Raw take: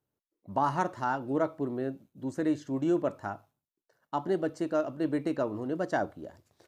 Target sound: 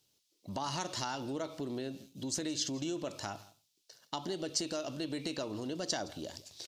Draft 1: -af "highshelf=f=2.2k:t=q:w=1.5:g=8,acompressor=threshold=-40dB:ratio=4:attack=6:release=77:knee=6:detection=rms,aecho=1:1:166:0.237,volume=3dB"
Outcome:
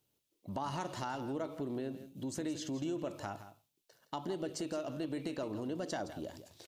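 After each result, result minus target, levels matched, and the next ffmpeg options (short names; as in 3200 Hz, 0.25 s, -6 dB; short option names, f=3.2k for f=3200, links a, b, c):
4000 Hz band -8.0 dB; echo-to-direct +8 dB
-af "highshelf=f=2.2k:t=q:w=1.5:g=8,acompressor=threshold=-40dB:ratio=4:attack=6:release=77:knee=6:detection=rms,equalizer=f=5.1k:t=o:w=1.6:g=13,aecho=1:1:166:0.237,volume=3dB"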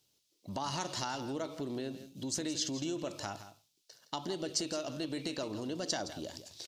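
echo-to-direct +8 dB
-af "highshelf=f=2.2k:t=q:w=1.5:g=8,acompressor=threshold=-40dB:ratio=4:attack=6:release=77:knee=6:detection=rms,equalizer=f=5.1k:t=o:w=1.6:g=13,aecho=1:1:166:0.0944,volume=3dB"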